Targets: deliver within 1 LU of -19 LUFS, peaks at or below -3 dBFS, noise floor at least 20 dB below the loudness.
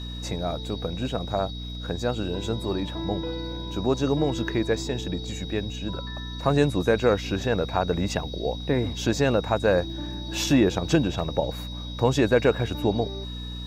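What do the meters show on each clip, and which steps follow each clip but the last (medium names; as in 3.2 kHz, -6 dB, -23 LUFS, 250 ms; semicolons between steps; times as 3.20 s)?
hum 60 Hz; highest harmonic 300 Hz; hum level -33 dBFS; steady tone 3.8 kHz; tone level -39 dBFS; loudness -26.0 LUFS; peak level -8.0 dBFS; loudness target -19.0 LUFS
-> de-hum 60 Hz, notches 5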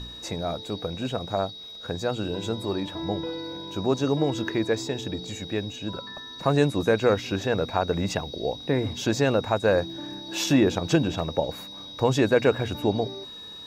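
hum not found; steady tone 3.8 kHz; tone level -39 dBFS
-> band-stop 3.8 kHz, Q 30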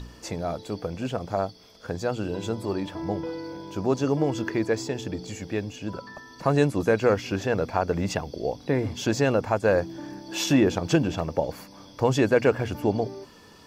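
steady tone not found; loudness -26.5 LUFS; peak level -7.5 dBFS; loudness target -19.0 LUFS
-> trim +7.5 dB; peak limiter -3 dBFS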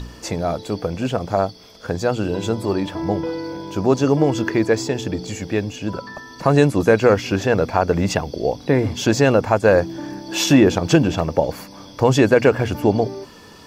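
loudness -19.0 LUFS; peak level -3.0 dBFS; noise floor -43 dBFS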